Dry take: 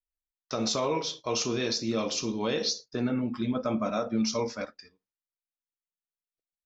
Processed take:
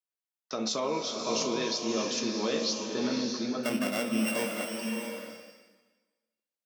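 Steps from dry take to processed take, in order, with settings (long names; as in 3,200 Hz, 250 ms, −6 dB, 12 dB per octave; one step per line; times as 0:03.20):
0:03.63–0:04.76: samples sorted by size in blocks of 16 samples
high-pass filter 170 Hz 24 dB per octave
slow-attack reverb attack 640 ms, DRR 2 dB
level −2.5 dB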